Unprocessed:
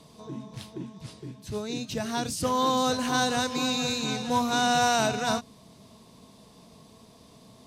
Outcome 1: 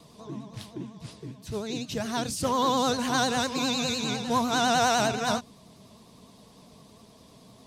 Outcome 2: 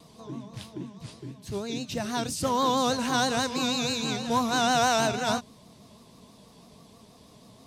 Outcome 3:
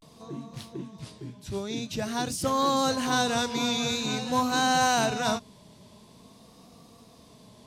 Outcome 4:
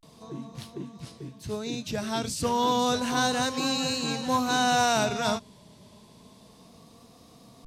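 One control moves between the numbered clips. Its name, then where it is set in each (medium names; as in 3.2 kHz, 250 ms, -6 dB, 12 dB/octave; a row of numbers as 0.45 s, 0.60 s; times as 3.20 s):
vibrato, rate: 9.9 Hz, 6.2 Hz, 0.48 Hz, 0.31 Hz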